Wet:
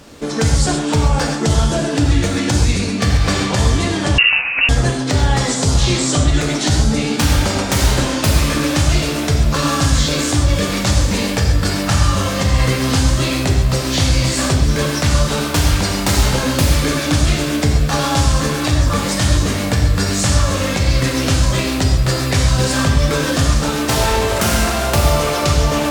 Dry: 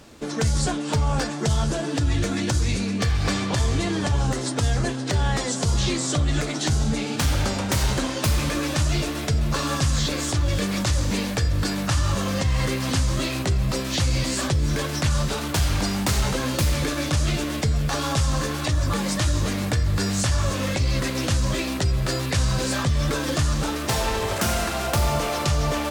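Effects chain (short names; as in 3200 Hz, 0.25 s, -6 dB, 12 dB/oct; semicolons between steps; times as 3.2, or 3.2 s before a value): on a send at -1.5 dB: reverb, pre-delay 3 ms; 4.18–4.69 on the sum: inverted band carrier 2800 Hz; gain +5.5 dB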